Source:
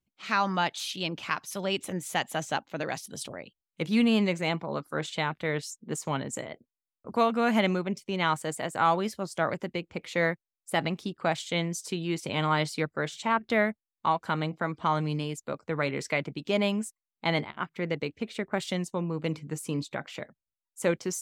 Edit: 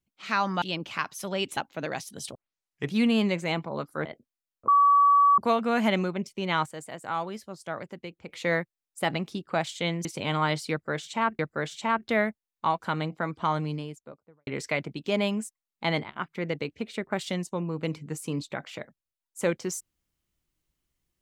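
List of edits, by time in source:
0.62–0.94 cut
1.89–2.54 cut
3.32 tape start 0.57 s
5.02–6.46 cut
7.09 add tone 1140 Hz -15.5 dBFS 0.70 s
8.37–10 gain -7 dB
11.76–12.14 cut
12.8–13.48 loop, 2 plays
14.86–15.88 studio fade out

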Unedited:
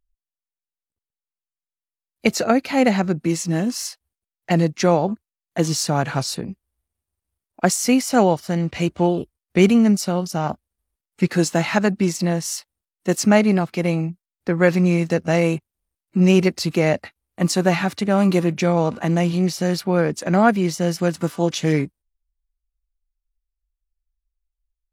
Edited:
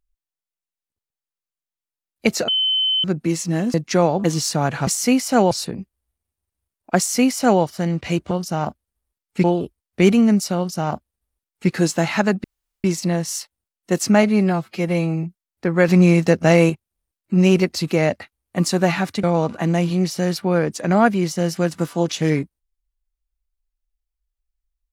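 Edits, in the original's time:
2.48–3.04 bleep 3060 Hz -16 dBFS
3.74–4.63 cut
5.13–5.58 cut
7.68–8.32 copy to 6.21
10.14–11.27 copy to 9.01
12.01 insert room tone 0.40 s
13.4–14.07 stretch 1.5×
14.72–15.53 gain +4.5 dB
18.07–18.66 cut

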